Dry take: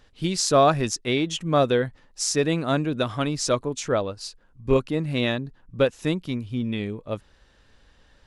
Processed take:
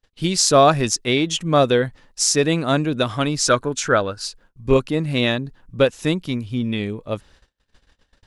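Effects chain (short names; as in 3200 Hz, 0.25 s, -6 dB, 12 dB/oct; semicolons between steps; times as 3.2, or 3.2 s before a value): high shelf 3100 Hz +4 dB; gate -53 dBFS, range -33 dB; 3.48–4.26 bell 1500 Hz +13.5 dB 0.36 oct; gain +4 dB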